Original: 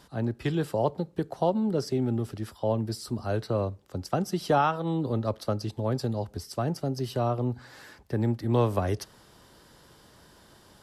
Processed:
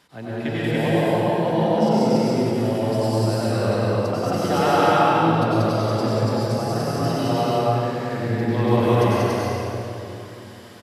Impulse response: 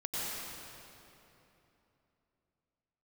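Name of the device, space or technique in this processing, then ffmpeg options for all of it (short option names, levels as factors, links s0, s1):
stadium PA: -filter_complex "[0:a]highpass=f=160:p=1,equalizer=f=2300:t=o:w=0.88:g=8,aecho=1:1:186.6|285.7:0.794|0.891[s0];[1:a]atrim=start_sample=2205[s1];[s0][s1]afir=irnorm=-1:irlink=0"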